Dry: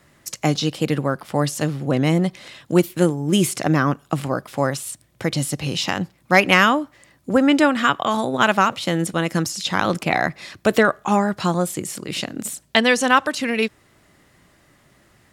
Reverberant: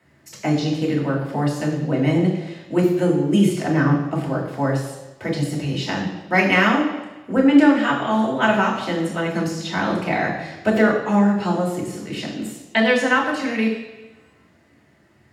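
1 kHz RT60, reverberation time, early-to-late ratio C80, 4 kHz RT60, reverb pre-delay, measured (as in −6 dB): 1.0 s, 1.0 s, 7.0 dB, 1.1 s, 3 ms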